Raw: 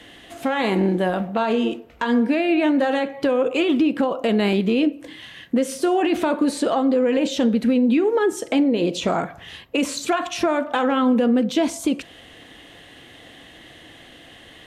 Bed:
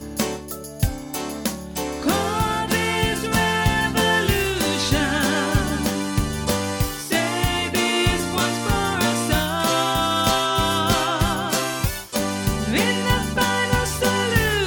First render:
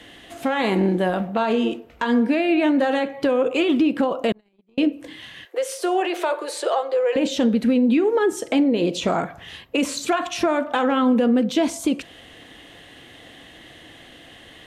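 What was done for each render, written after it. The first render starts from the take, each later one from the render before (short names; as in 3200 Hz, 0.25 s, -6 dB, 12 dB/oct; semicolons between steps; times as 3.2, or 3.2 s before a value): 4.32–4.78 gate -14 dBFS, range -48 dB; 5.45–7.16 steep high-pass 360 Hz 72 dB/oct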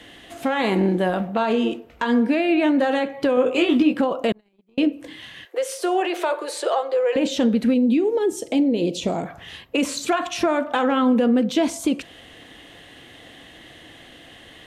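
3.35–3.99 doubler 20 ms -4 dB; 7.74–9.26 bell 1400 Hz -13.5 dB 1.2 oct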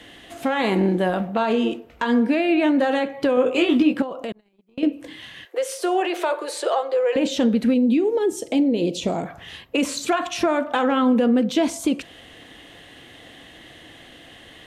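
4.02–4.83 compressor 2:1, threshold -33 dBFS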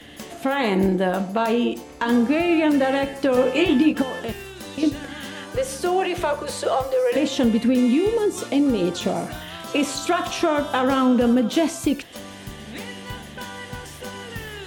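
add bed -15 dB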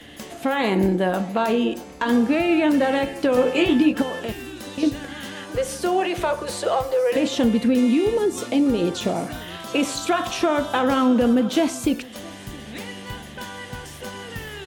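echo 0.668 s -22.5 dB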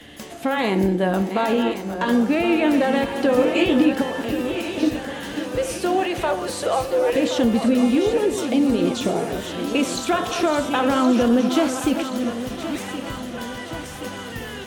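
reverse delay 0.513 s, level -8.5 dB; thinning echo 1.072 s, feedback 58%, high-pass 160 Hz, level -11 dB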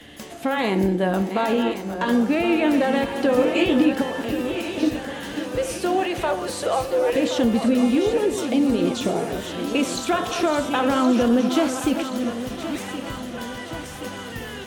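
gain -1 dB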